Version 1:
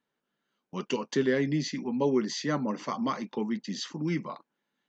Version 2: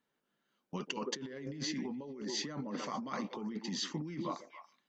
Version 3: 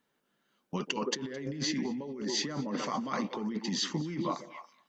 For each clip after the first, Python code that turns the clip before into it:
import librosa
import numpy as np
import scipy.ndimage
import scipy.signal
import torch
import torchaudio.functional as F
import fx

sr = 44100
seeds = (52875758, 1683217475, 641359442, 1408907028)

y1 = fx.echo_stepped(x, sr, ms=141, hz=390.0, octaves=1.4, feedback_pct=70, wet_db=-9.5)
y1 = fx.over_compress(y1, sr, threshold_db=-35.0, ratio=-1.0)
y1 = y1 * 10.0 ** (-5.0 / 20.0)
y2 = y1 + 10.0 ** (-21.5 / 20.0) * np.pad(y1, (int(215 * sr / 1000.0), 0))[:len(y1)]
y2 = y2 * 10.0 ** (5.5 / 20.0)